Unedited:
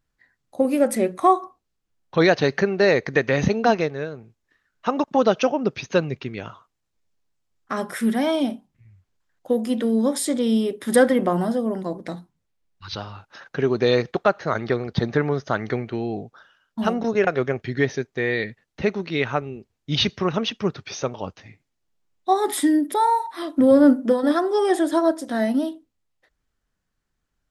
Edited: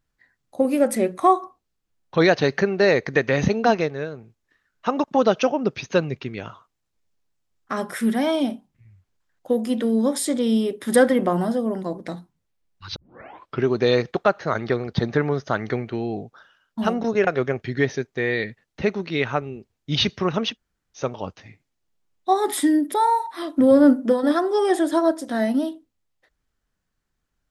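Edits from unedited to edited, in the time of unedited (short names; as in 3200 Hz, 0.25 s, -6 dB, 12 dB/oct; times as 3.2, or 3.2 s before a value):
12.96 tape start 0.70 s
20.54–20.99 room tone, crossfade 0.10 s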